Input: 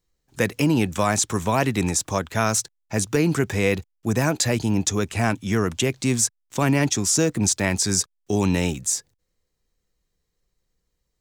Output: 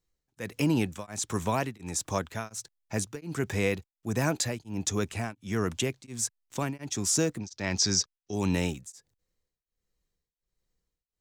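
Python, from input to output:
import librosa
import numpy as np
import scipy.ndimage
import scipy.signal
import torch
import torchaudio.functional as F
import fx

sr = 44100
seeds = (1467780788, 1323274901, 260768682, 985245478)

y = fx.high_shelf_res(x, sr, hz=7500.0, db=-11.5, q=3.0, at=(7.4, 8.34))
y = y * np.abs(np.cos(np.pi * 1.4 * np.arange(len(y)) / sr))
y = y * librosa.db_to_amplitude(-5.5)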